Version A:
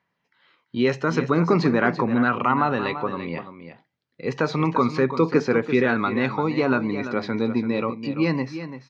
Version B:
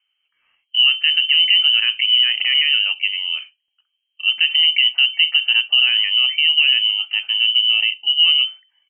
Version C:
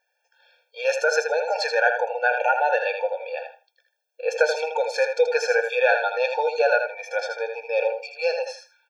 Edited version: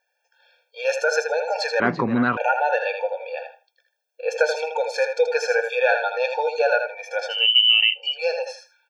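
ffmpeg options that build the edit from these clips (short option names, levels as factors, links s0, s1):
-filter_complex "[2:a]asplit=3[s0][s1][s2];[s0]atrim=end=1.802[s3];[0:a]atrim=start=1.798:end=2.372[s4];[s1]atrim=start=2.368:end=7.5[s5];[1:a]atrim=start=7.26:end=8.19[s6];[s2]atrim=start=7.95[s7];[s3][s4]acrossfade=d=0.004:c1=hsin:c2=hsin[s8];[s8][s5]acrossfade=d=0.004:c1=hsin:c2=hsin[s9];[s9][s6]acrossfade=d=0.24:c1=tri:c2=tri[s10];[s10][s7]acrossfade=d=0.24:c1=tri:c2=tri"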